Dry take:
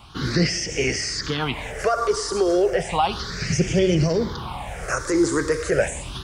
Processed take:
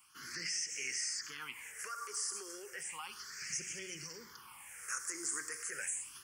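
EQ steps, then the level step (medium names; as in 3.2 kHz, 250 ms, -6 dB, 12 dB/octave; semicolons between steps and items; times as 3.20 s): differentiator; hum notches 60/120/180 Hz; static phaser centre 1.6 kHz, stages 4; -2.0 dB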